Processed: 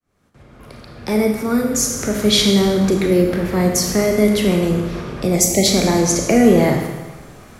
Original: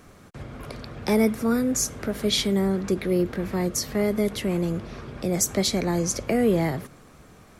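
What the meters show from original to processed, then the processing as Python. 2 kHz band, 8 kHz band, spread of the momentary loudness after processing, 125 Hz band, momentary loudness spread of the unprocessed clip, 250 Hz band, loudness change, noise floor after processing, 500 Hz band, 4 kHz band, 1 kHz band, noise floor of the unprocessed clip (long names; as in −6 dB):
+8.5 dB, +9.0 dB, 9 LU, +8.0 dB, 14 LU, +8.5 dB, +8.5 dB, −45 dBFS, +8.5 dB, +9.5 dB, +8.5 dB, −51 dBFS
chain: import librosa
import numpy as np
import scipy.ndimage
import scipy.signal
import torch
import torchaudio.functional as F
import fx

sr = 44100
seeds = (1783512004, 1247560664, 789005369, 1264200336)

y = fx.fade_in_head(x, sr, length_s=2.3)
y = fx.spec_erase(y, sr, start_s=5.36, length_s=0.3, low_hz=910.0, high_hz=1900.0)
y = fx.rev_schroeder(y, sr, rt60_s=1.2, comb_ms=26, drr_db=2.5)
y = y * 10.0 ** (7.5 / 20.0)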